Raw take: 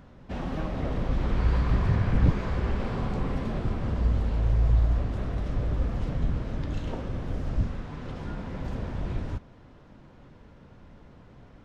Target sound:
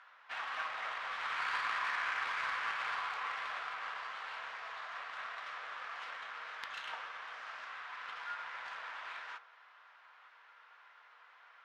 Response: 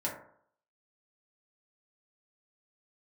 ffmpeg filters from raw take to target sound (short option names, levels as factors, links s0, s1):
-filter_complex "[0:a]highpass=f=1200:w=0.5412,highpass=f=1200:w=1.3066,asplit=2[s0][s1];[1:a]atrim=start_sample=2205,asetrate=34398,aresample=44100[s2];[s1][s2]afir=irnorm=-1:irlink=0,volume=0.188[s3];[s0][s3]amix=inputs=2:normalize=0,adynamicsmooth=sensitivity=7:basefreq=2700,volume=2.11"